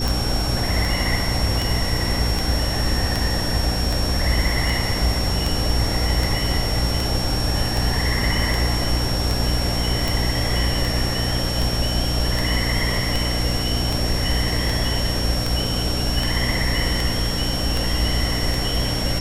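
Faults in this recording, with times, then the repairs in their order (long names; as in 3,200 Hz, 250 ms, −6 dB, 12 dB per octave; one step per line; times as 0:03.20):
mains hum 60 Hz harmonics 5 −25 dBFS
scratch tick 78 rpm
whistle 5,500 Hz −27 dBFS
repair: click removal
notch filter 5,500 Hz, Q 30
hum removal 60 Hz, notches 5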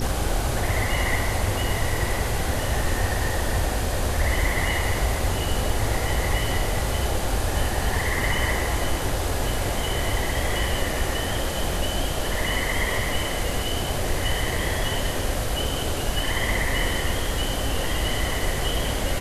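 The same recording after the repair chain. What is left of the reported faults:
none of them is left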